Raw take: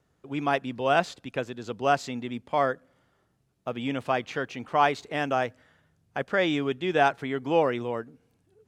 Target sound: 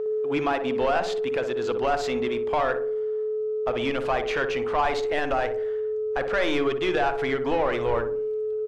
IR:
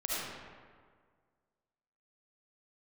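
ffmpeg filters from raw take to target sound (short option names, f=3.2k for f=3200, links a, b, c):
-filter_complex "[0:a]aeval=exprs='val(0)+0.0224*sin(2*PI*430*n/s)':c=same,alimiter=limit=-19dB:level=0:latency=1:release=117,asplit=2[a][b];[b]highpass=f=720:p=1,volume=14dB,asoftclip=type=tanh:threshold=-19dB[c];[a][c]amix=inputs=2:normalize=0,lowpass=f=2.2k:p=1,volume=-6dB,asubboost=boost=8.5:cutoff=61,asplit=2[d][e];[e]adelay=60,lowpass=f=990:p=1,volume=-6dB,asplit=2[f][g];[g]adelay=60,lowpass=f=990:p=1,volume=0.51,asplit=2[h][i];[i]adelay=60,lowpass=f=990:p=1,volume=0.51,asplit=2[j][k];[k]adelay=60,lowpass=f=990:p=1,volume=0.51,asplit=2[l][m];[m]adelay=60,lowpass=f=990:p=1,volume=0.51,asplit=2[n][o];[o]adelay=60,lowpass=f=990:p=1,volume=0.51[p];[f][h][j][l][n][p]amix=inputs=6:normalize=0[q];[d][q]amix=inputs=2:normalize=0,volume=4dB"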